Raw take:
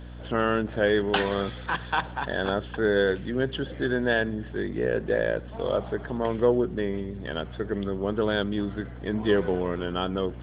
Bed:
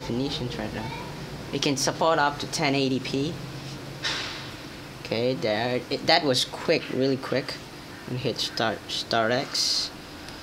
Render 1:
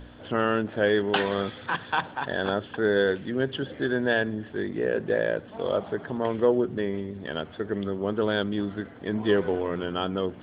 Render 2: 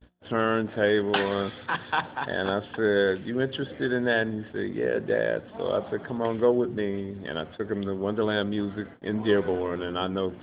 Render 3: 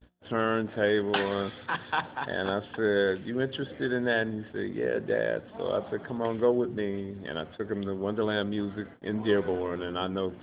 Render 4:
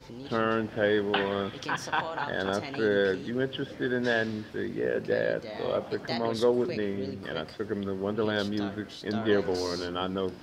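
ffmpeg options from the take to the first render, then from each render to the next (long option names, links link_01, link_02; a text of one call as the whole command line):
ffmpeg -i in.wav -af "bandreject=frequency=60:width_type=h:width=4,bandreject=frequency=120:width_type=h:width=4,bandreject=frequency=180:width_type=h:width=4" out.wav
ffmpeg -i in.wav -af "agate=range=-37dB:threshold=-42dB:ratio=16:detection=peak,bandreject=frequency=177.9:width_type=h:width=4,bandreject=frequency=355.8:width_type=h:width=4,bandreject=frequency=533.7:width_type=h:width=4,bandreject=frequency=711.6:width_type=h:width=4,bandreject=frequency=889.5:width_type=h:width=4" out.wav
ffmpeg -i in.wav -af "volume=-2.5dB" out.wav
ffmpeg -i in.wav -i bed.wav -filter_complex "[1:a]volume=-15dB[link_01];[0:a][link_01]amix=inputs=2:normalize=0" out.wav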